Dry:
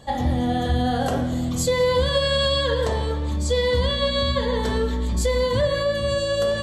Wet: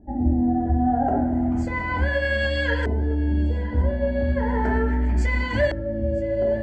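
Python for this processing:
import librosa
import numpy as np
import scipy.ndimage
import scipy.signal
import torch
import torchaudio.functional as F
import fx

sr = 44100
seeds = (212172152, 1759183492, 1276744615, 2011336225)

p1 = fx.dynamic_eq(x, sr, hz=6000.0, q=0.74, threshold_db=-42.0, ratio=4.0, max_db=6)
p2 = fx.filter_lfo_lowpass(p1, sr, shape='saw_up', hz=0.35, low_hz=300.0, high_hz=3300.0, q=1.1)
p3 = fx.fixed_phaser(p2, sr, hz=750.0, stages=8)
p4 = fx.rider(p3, sr, range_db=10, speed_s=0.5)
p5 = p3 + (p4 * 10.0 ** (1.0 / 20.0))
p6 = fx.echo_thinned(p5, sr, ms=964, feedback_pct=60, hz=1200.0, wet_db=-19.0)
y = p6 * 10.0 ** (-1.5 / 20.0)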